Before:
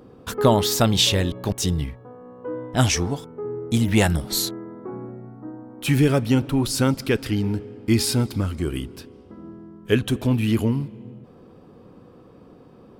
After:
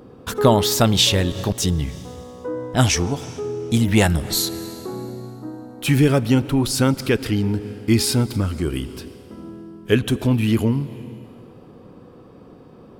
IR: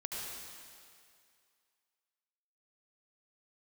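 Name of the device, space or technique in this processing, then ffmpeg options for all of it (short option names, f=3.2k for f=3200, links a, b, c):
ducked reverb: -filter_complex "[0:a]asplit=3[a][b][c];[1:a]atrim=start_sample=2205[d];[b][d]afir=irnorm=-1:irlink=0[e];[c]apad=whole_len=573085[f];[e][f]sidechaincompress=threshold=-32dB:ratio=8:attack=32:release=118,volume=-12dB[g];[a][g]amix=inputs=2:normalize=0,volume=2dB"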